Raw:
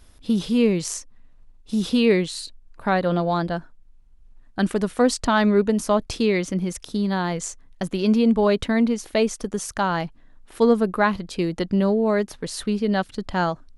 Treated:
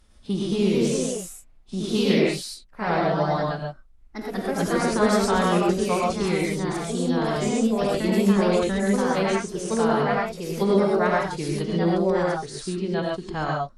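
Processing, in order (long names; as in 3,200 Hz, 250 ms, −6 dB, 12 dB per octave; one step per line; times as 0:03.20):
phase-vocoder pitch shift with formants kept −2.5 semitones
reverb whose tail is shaped and stops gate 160 ms rising, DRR −2 dB
delay with pitch and tempo change per echo 257 ms, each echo +2 semitones, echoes 2
level −6.5 dB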